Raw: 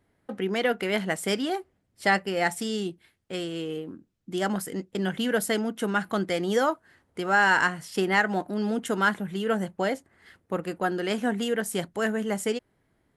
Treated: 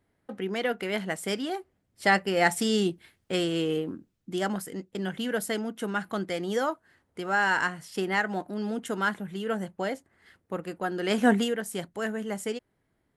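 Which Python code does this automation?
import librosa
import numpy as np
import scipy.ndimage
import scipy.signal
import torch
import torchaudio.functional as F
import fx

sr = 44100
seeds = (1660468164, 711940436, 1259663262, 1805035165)

y = fx.gain(x, sr, db=fx.line((1.55, -3.5), (2.78, 5.0), (3.83, 5.0), (4.65, -4.0), (10.91, -4.0), (11.32, 7.0), (11.57, -4.5)))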